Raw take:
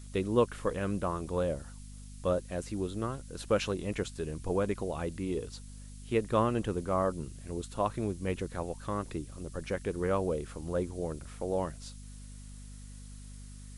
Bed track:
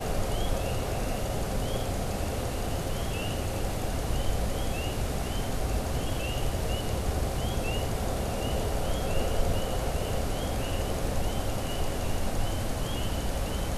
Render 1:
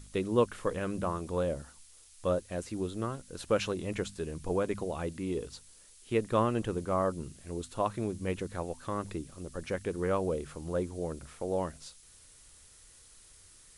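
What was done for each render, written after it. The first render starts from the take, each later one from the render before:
hum removal 50 Hz, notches 5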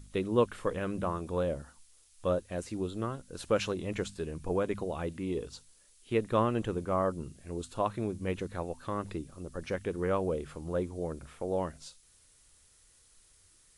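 noise reduction from a noise print 6 dB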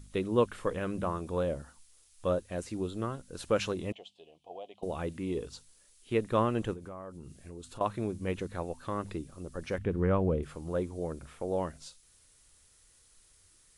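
0:03.92–0:04.83: pair of resonant band-passes 1,500 Hz, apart 2.1 octaves
0:06.73–0:07.81: downward compressor 5 to 1, threshold −41 dBFS
0:09.78–0:10.43: bass and treble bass +9 dB, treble −14 dB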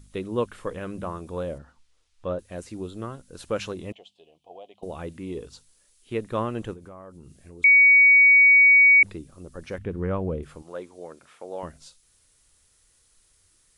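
0:01.58–0:02.39: Bessel low-pass filter 3,200 Hz
0:07.64–0:09.03: beep over 2,250 Hz −11 dBFS
0:10.62–0:11.63: meter weighting curve A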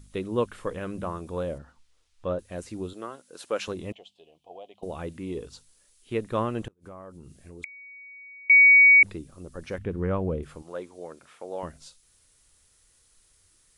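0:02.93–0:03.68: high-pass filter 350 Hz
0:06.61–0:08.50: gate with flip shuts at −24 dBFS, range −32 dB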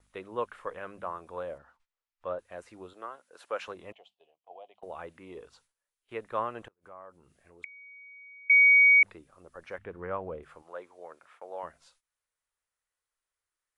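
noise gate −55 dBFS, range −16 dB
three-way crossover with the lows and the highs turned down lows −18 dB, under 560 Hz, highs −14 dB, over 2,300 Hz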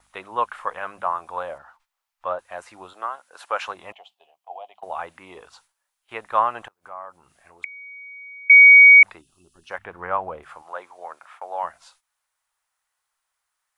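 0:09.21–0:09.70: gain on a spectral selection 410–2,500 Hz −24 dB
drawn EQ curve 470 Hz 0 dB, 790 Hz +15 dB, 1,900 Hz +10 dB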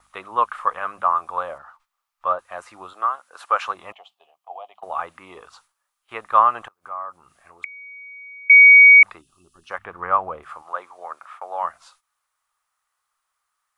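parametric band 1,200 Hz +10.5 dB 0.28 octaves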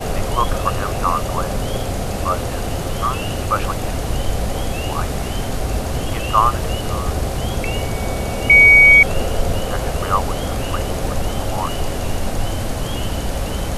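mix in bed track +8 dB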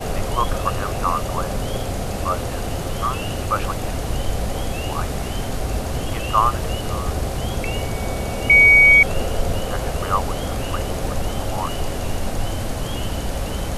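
level −2.5 dB

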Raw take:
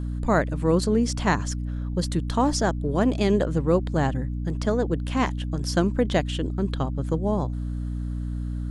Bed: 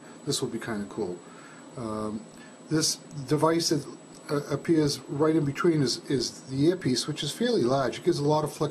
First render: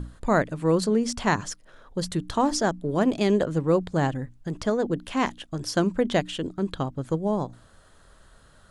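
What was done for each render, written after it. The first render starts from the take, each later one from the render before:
mains-hum notches 60/120/180/240/300 Hz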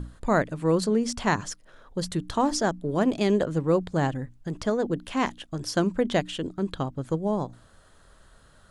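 level −1 dB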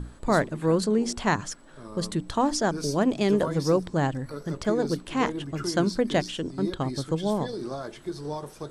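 mix in bed −9.5 dB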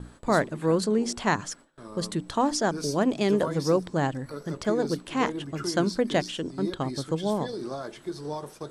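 noise gate with hold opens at −35 dBFS
low-shelf EQ 79 Hz −10.5 dB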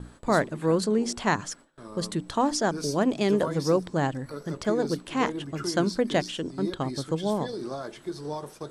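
no processing that can be heard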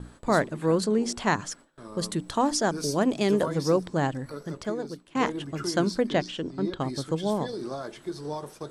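0:01.99–0:03.46: high-shelf EQ 9,100 Hz +6.5 dB
0:04.28–0:05.15: fade out, to −21 dB
0:06.07–0:06.80: high-frequency loss of the air 81 metres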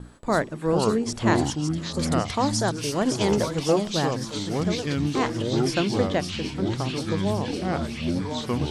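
delay with a high-pass on its return 559 ms, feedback 63%, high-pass 3,200 Hz, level −5 dB
delay with pitch and tempo change per echo 332 ms, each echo −6 semitones, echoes 2

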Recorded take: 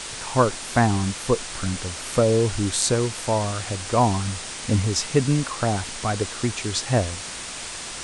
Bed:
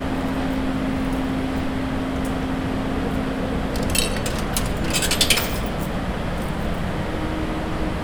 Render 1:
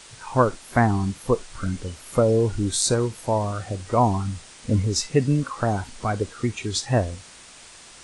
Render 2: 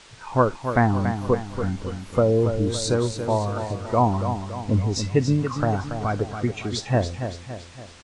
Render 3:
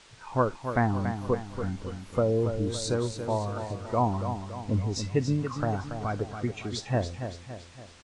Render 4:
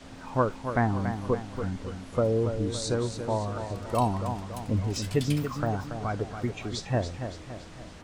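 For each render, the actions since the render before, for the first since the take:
noise reduction from a noise print 12 dB
high-frequency loss of the air 86 metres; repeating echo 282 ms, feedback 49%, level −8.5 dB
level −6 dB
mix in bed −22.5 dB

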